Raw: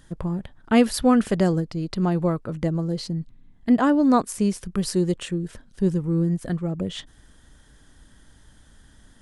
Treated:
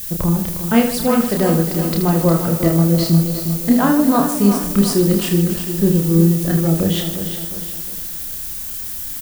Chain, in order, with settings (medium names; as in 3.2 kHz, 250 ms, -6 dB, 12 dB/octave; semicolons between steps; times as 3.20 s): gain riding within 4 dB 0.5 s; added noise violet -34 dBFS; reverse bouncing-ball echo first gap 30 ms, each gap 1.6×, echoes 5; bit-crushed delay 357 ms, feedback 55%, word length 6-bit, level -8.5 dB; trim +4 dB